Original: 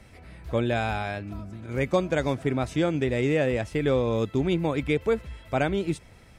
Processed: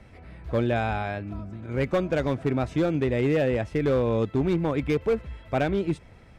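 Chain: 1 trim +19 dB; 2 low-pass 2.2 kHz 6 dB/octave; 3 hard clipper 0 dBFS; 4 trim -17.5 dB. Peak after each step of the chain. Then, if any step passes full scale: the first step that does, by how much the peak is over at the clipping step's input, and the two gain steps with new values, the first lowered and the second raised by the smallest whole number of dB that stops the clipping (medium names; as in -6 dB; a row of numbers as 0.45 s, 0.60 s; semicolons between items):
+8.0 dBFS, +7.5 dBFS, 0.0 dBFS, -17.5 dBFS; step 1, 7.5 dB; step 1 +11 dB, step 4 -9.5 dB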